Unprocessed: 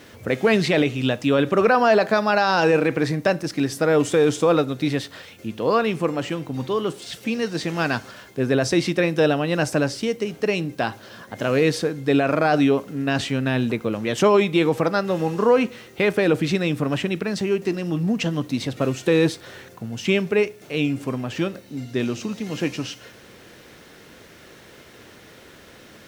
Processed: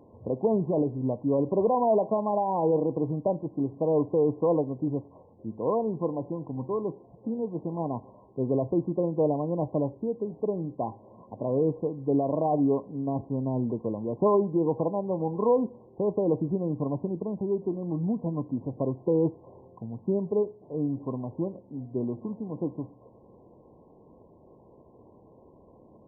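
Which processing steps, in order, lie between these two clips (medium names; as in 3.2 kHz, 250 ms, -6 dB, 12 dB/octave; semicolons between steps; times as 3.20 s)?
brick-wall FIR low-pass 1.1 kHz; trim -6 dB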